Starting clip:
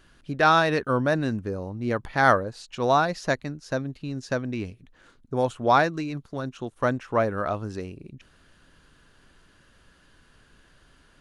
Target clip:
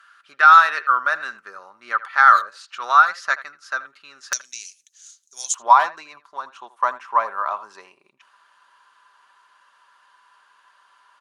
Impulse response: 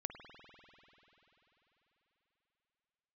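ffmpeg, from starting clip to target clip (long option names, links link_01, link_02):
-filter_complex "[0:a]asetnsamples=nb_out_samples=441:pad=0,asendcmd='4.33 bandpass f 6400;5.54 bandpass f 1000',bandpass=frequency=1300:width_type=q:width=6.3:csg=0,aderivative,aecho=1:1:5.1:0.33,asplit=2[link_01][link_02];[link_02]adelay=80,highpass=300,lowpass=3400,asoftclip=type=hard:threshold=-36.5dB,volume=-16dB[link_03];[link_01][link_03]amix=inputs=2:normalize=0,alimiter=level_in=32dB:limit=-1dB:release=50:level=0:latency=1,volume=-1dB"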